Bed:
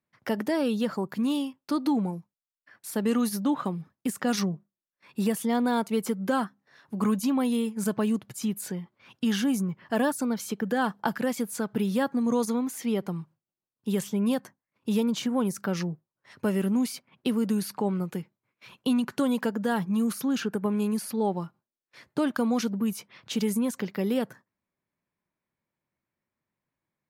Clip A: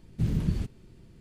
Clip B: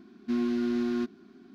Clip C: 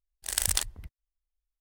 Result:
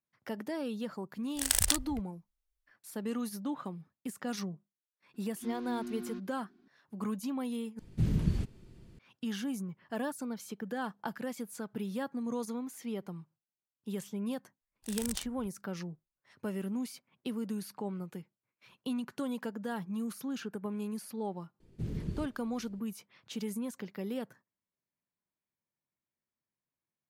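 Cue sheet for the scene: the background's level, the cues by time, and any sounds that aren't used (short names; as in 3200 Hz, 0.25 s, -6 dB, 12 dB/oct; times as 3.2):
bed -10.5 dB
1.13 add C -0.5 dB
5.14 add B -12.5 dB
7.79 replace with A -2 dB
14.6 add C -12 dB
21.6 add A -10.5 dB + bell 410 Hz +7 dB 0.94 oct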